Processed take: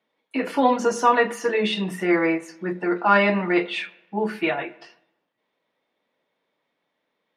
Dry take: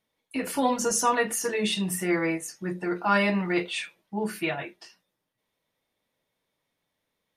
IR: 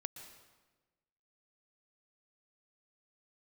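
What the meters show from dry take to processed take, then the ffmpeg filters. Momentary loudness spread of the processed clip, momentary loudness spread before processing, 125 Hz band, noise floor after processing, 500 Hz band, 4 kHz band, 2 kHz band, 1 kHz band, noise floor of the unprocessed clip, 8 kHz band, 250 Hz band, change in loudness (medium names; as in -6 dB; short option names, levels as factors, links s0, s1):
12 LU, 11 LU, +1.0 dB, -77 dBFS, +6.5 dB, +1.5 dB, +5.0 dB, +6.5 dB, -81 dBFS, no reading, +4.0 dB, +4.5 dB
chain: -filter_complex "[0:a]acrossover=split=190 4400:gain=0.0794 1 0.1[s0][s1][s2];[s0][s1][s2]amix=inputs=3:normalize=0,asplit=2[s3][s4];[1:a]atrim=start_sample=2205,asetrate=66150,aresample=44100,lowpass=2600[s5];[s4][s5]afir=irnorm=-1:irlink=0,volume=0.596[s6];[s3][s6]amix=inputs=2:normalize=0,volume=1.68"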